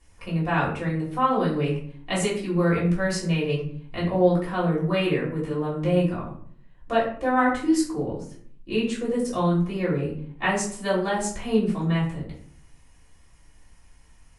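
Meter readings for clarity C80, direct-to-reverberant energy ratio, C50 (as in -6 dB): 9.5 dB, -7.5 dB, 5.5 dB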